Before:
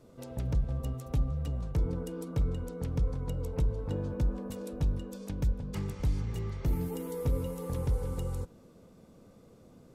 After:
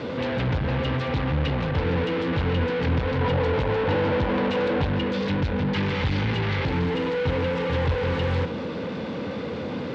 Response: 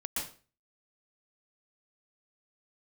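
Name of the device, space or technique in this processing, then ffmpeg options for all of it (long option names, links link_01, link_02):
overdrive pedal into a guitar cabinet: -filter_complex "[0:a]asplit=2[link_01][link_02];[link_02]highpass=frequency=720:poles=1,volume=40dB,asoftclip=type=tanh:threshold=-21dB[link_03];[link_01][link_03]amix=inputs=2:normalize=0,lowpass=frequency=3500:poles=1,volume=-6dB,highpass=81,equalizer=frequency=83:width_type=q:width=4:gain=9,equalizer=frequency=380:width_type=q:width=4:gain=-6,equalizer=frequency=670:width_type=q:width=4:gain=-10,equalizer=frequency=1200:width_type=q:width=4:gain=-8,lowpass=frequency=3900:width=0.5412,lowpass=frequency=3900:width=1.3066,asettb=1/sr,asplit=3[link_04][link_05][link_06];[link_04]atrim=end=3.214[link_07];[link_05]atrim=start=3.21:end=4.86,asetpts=PTS-STARTPTS,afade=type=in:duration=0.004:curve=qsin,afade=type=out:start_time=1.646:duration=0.004:curve=qsin,equalizer=frequency=750:width_type=o:width=1.4:gain=5[link_08];[link_06]atrim=start=4.856[link_09];[link_07][link_08]acrossfade=duration=0.004:curve1=hsin:curve2=qsin[link_10];[link_10][link_09]acrossfade=duration=0.004:curve1=qsin:curve2=hsin,volume=5dB"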